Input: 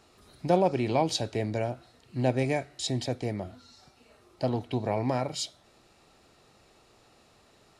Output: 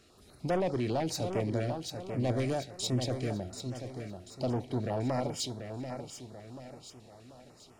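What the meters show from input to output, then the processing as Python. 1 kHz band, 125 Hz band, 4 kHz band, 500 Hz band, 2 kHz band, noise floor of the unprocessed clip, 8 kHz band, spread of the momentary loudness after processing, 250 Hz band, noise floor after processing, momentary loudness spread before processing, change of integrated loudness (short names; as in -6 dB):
-6.0 dB, -1.5 dB, -3.5 dB, -4.0 dB, -5.0 dB, -61 dBFS, -1.5 dB, 16 LU, -2.5 dB, -58 dBFS, 12 LU, -4.5 dB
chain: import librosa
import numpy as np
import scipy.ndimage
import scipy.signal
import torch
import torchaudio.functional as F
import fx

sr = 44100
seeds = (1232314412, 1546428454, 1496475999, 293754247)

p1 = 10.0 ** (-24.5 / 20.0) * np.tanh(x / 10.0 ** (-24.5 / 20.0))
p2 = p1 + fx.echo_feedback(p1, sr, ms=737, feedback_pct=43, wet_db=-7.5, dry=0)
y = fx.filter_held_notch(p2, sr, hz=10.0, low_hz=900.0, high_hz=4000.0)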